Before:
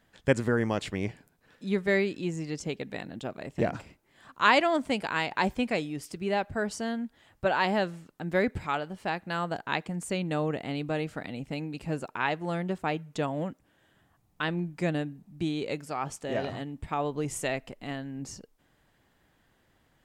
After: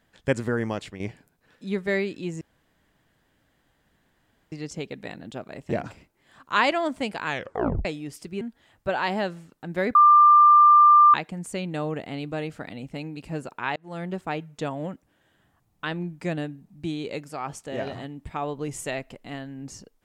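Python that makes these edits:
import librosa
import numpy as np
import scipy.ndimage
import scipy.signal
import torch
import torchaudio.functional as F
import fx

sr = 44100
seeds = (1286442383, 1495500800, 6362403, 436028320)

y = fx.edit(x, sr, fx.fade_out_to(start_s=0.7, length_s=0.3, floor_db=-9.5),
    fx.insert_room_tone(at_s=2.41, length_s=2.11),
    fx.tape_stop(start_s=5.15, length_s=0.59),
    fx.cut(start_s=6.3, length_s=0.68),
    fx.bleep(start_s=8.52, length_s=1.19, hz=1190.0, db=-10.5),
    fx.fade_in_span(start_s=12.33, length_s=0.3), tone=tone)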